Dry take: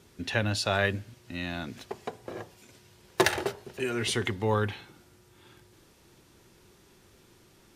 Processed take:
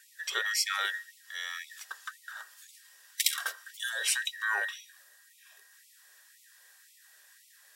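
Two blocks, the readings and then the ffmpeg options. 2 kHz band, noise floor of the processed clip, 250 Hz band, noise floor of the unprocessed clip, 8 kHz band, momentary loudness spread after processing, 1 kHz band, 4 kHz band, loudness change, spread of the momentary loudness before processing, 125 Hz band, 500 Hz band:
+1.0 dB, -61 dBFS, under -30 dB, -60 dBFS, +6.0 dB, 16 LU, -5.5 dB, +1.5 dB, -1.5 dB, 15 LU, under -40 dB, -20.5 dB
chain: -af "afftfilt=real='real(if(between(b,1,1012),(2*floor((b-1)/92)+1)*92-b,b),0)':imag='imag(if(between(b,1,1012),(2*floor((b-1)/92)+1)*92-b,b),0)*if(between(b,1,1012),-1,1)':win_size=2048:overlap=0.75,crystalizer=i=3.5:c=0,afftfilt=real='re*gte(b*sr/1024,360*pow(2000/360,0.5+0.5*sin(2*PI*1.9*pts/sr)))':imag='im*gte(b*sr/1024,360*pow(2000/360,0.5+0.5*sin(2*PI*1.9*pts/sr)))':win_size=1024:overlap=0.75,volume=0.447"

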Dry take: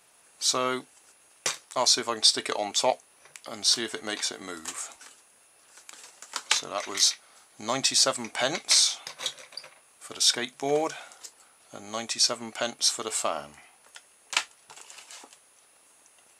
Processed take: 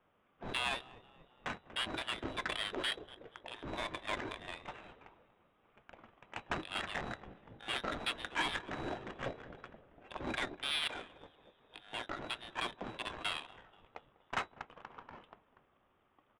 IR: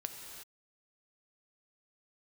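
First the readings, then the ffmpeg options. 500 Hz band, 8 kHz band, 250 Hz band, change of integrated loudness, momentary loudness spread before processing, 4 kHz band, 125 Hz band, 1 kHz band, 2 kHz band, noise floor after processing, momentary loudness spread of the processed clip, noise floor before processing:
-13.5 dB, -28.5 dB, -8.0 dB, -14.0 dB, 19 LU, -14.5 dB, -2.0 dB, -8.5 dB, -4.5 dB, -73 dBFS, 20 LU, -60 dBFS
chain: -filter_complex "[0:a]asplit=2[s0][s1];[s1]asplit=5[s2][s3][s4][s5][s6];[s2]adelay=240,afreqshift=-51,volume=0.1[s7];[s3]adelay=480,afreqshift=-102,volume=0.0617[s8];[s4]adelay=720,afreqshift=-153,volume=0.0385[s9];[s5]adelay=960,afreqshift=-204,volume=0.0237[s10];[s6]adelay=1200,afreqshift=-255,volume=0.0148[s11];[s7][s8][s9][s10][s11]amix=inputs=5:normalize=0[s12];[s0][s12]amix=inputs=2:normalize=0,aeval=exprs='(tanh(39.8*val(0)+0.35)-tanh(0.35))/39.8':c=same,lowpass=f=3300:t=q:w=0.5098,lowpass=f=3300:t=q:w=0.6013,lowpass=f=3300:t=q:w=0.9,lowpass=f=3300:t=q:w=2.563,afreqshift=-3900,asplit=2[s13][s14];[s14]adelay=197,lowpass=f=2000:p=1,volume=0.158,asplit=2[s15][s16];[s16]adelay=197,lowpass=f=2000:p=1,volume=0.51,asplit=2[s17][s18];[s18]adelay=197,lowpass=f=2000:p=1,volume=0.51,asplit=2[s19][s20];[s20]adelay=197,lowpass=f=2000:p=1,volume=0.51,asplit=2[s21][s22];[s22]adelay=197,lowpass=f=2000:p=1,volume=0.51[s23];[s15][s17][s19][s21][s23]amix=inputs=5:normalize=0[s24];[s13][s24]amix=inputs=2:normalize=0,adynamicsmooth=sensitivity=4:basefreq=600,volume=2.66"

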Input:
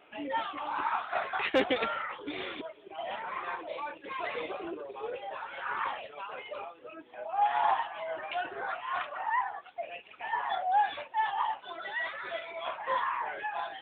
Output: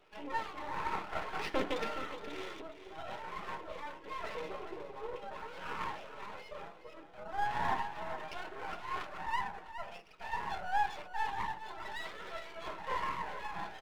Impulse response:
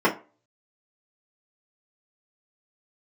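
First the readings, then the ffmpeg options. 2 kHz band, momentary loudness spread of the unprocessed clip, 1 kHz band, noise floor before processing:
-6.0 dB, 13 LU, -6.5 dB, -56 dBFS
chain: -filter_complex "[0:a]aeval=exprs='max(val(0),0)':c=same,aecho=1:1:417:0.266,asplit=2[s0][s1];[1:a]atrim=start_sample=2205,lowpass=2200[s2];[s1][s2]afir=irnorm=-1:irlink=0,volume=0.0841[s3];[s0][s3]amix=inputs=2:normalize=0,volume=0.631"

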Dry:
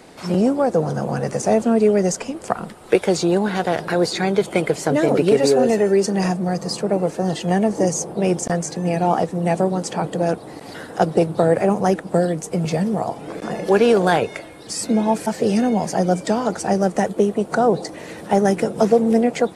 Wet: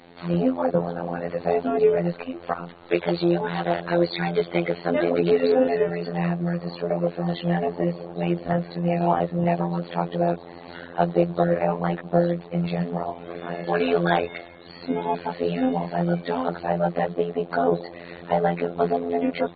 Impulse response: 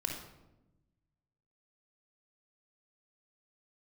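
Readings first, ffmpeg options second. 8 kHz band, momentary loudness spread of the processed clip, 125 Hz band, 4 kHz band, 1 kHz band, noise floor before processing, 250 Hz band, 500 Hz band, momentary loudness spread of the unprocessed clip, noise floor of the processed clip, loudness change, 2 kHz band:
under -40 dB, 9 LU, -3.0 dB, -7.0 dB, -4.0 dB, -38 dBFS, -6.0 dB, -5.0 dB, 9 LU, -43 dBFS, -5.0 dB, -3.5 dB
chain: -af "afftfilt=real='hypot(re,im)*cos(PI*b)':imag='0':win_size=2048:overlap=0.75,volume=0.841" -ar 32000 -c:a aac -b:a 16k

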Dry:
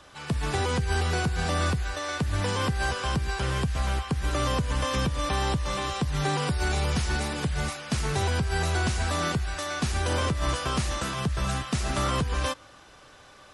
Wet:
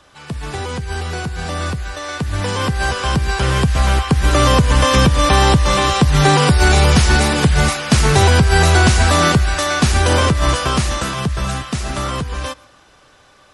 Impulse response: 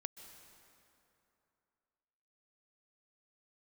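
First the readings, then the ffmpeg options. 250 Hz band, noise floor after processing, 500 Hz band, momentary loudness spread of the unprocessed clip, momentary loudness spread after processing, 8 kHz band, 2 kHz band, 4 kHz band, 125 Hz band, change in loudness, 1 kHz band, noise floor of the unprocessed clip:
+12.5 dB, -50 dBFS, +12.5 dB, 3 LU, 13 LU, +12.5 dB, +12.5 dB, +12.5 dB, +12.5 dB, +12.5 dB, +12.5 dB, -52 dBFS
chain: -filter_complex "[0:a]dynaudnorm=f=310:g=21:m=5.62,asplit=2[s0][s1];[1:a]atrim=start_sample=2205,afade=t=out:st=0.19:d=0.01,atrim=end_sample=8820[s2];[s1][s2]afir=irnorm=-1:irlink=0,volume=1.12[s3];[s0][s3]amix=inputs=2:normalize=0,volume=0.708"

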